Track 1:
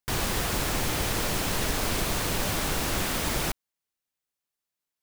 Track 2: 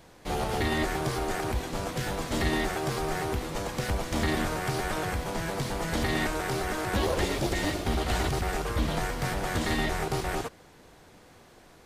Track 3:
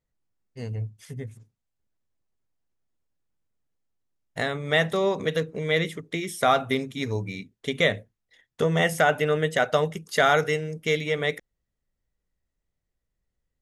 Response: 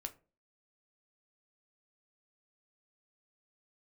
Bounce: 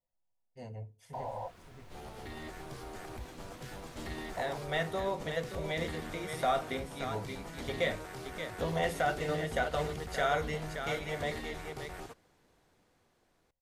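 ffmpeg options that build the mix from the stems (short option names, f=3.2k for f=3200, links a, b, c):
-filter_complex "[0:a]lowpass=f=2.5k:p=1,adelay=1050,volume=-0.5dB,asplit=2[a][b];[b]volume=-23.5dB[c];[1:a]dynaudnorm=f=240:g=9:m=4dB,adelay=1650,volume=-18dB[d];[2:a]volume=-0.5dB,asplit=4[e][f][g][h];[f]volume=-8.5dB[i];[g]volume=-19dB[j];[h]apad=whole_len=267928[k];[a][k]sidechaingate=range=-33dB:threshold=-53dB:ratio=16:detection=peak[l];[l][e]amix=inputs=2:normalize=0,asuperpass=centerf=710:order=20:qfactor=1.4,acompressor=threshold=-34dB:ratio=6,volume=0dB[m];[3:a]atrim=start_sample=2205[n];[c][i]amix=inputs=2:normalize=0[o];[o][n]afir=irnorm=-1:irlink=0[p];[j]aecho=0:1:577:1[q];[d][m][p][q]amix=inputs=4:normalize=0"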